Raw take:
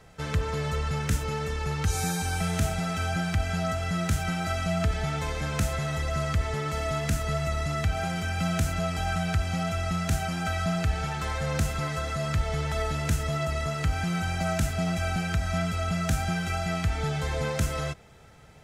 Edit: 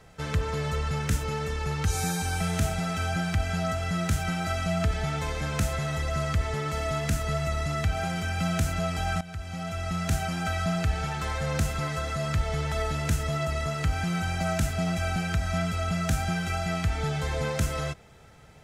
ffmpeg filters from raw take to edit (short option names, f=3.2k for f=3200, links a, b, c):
-filter_complex "[0:a]asplit=2[a][b];[a]atrim=end=9.21,asetpts=PTS-STARTPTS,afade=t=out:st=9.206:d=0.004:c=hsin:silence=0.149624[c];[b]atrim=start=9.21,asetpts=PTS-STARTPTS,afade=t=in:d=0.9:silence=0.149624[d];[c][d]concat=n=2:v=0:a=1"